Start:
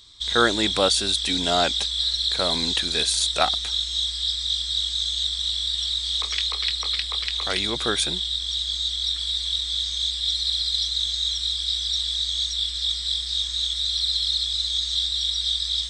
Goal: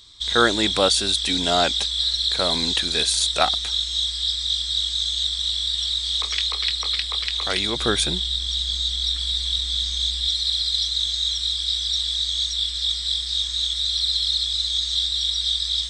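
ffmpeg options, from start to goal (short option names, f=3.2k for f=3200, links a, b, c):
-filter_complex "[0:a]asettb=1/sr,asplit=3[a][b][c];[a]atrim=end=7.794[d];[b]atrim=start=7.79:end=10.28,asetpts=PTS-STARTPTS,afade=t=in:d=0.004:c=qsin,afade=t=out:st=2.486:d=0.004:c=qsin,lowshelf=f=290:g=6.5[e];[c]atrim=start=10.276[f];[d][e]acrossfade=d=0.004:c1=hsin:c2=qsin[g];[g][f]acrossfade=d=0.004:c1=qsin:c2=hsin,volume=1.5dB"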